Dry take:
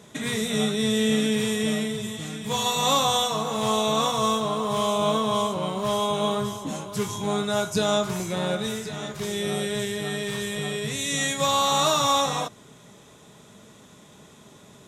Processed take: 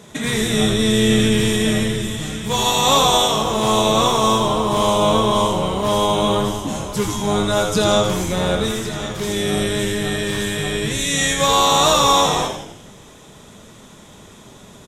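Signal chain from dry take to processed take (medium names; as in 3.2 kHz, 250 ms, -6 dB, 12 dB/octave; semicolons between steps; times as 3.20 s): frequency-shifting echo 83 ms, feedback 52%, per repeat -100 Hz, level -6 dB; trim +6 dB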